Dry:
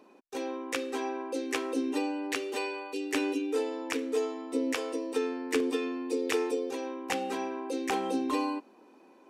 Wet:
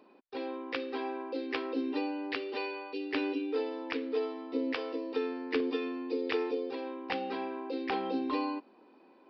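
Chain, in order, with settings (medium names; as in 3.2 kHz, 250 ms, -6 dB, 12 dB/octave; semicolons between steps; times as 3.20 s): resampled via 11.025 kHz; trim -2.5 dB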